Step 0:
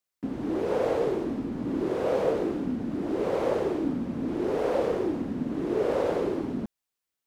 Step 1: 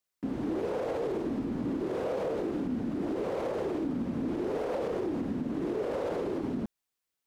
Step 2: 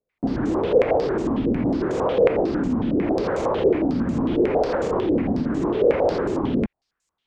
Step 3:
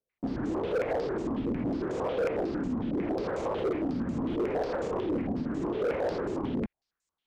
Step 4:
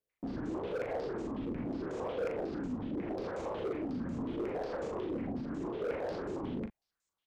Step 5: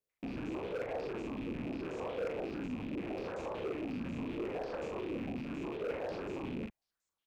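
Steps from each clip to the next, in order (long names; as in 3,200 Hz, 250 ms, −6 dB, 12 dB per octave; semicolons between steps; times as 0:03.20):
brickwall limiter −24.5 dBFS, peak gain reduction 11 dB
low-shelf EQ 150 Hz +8 dB; low-pass on a step sequencer 11 Hz 490–7,100 Hz; level +7 dB
gain into a clipping stage and back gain 16 dB; level −8.5 dB
brickwall limiter −30 dBFS, peak gain reduction 5.5 dB; double-tracking delay 40 ms −7.5 dB; level −2 dB
loose part that buzzes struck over −46 dBFS, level −38 dBFS; level −2 dB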